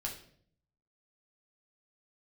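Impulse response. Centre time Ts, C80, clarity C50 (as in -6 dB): 22 ms, 12.0 dB, 8.0 dB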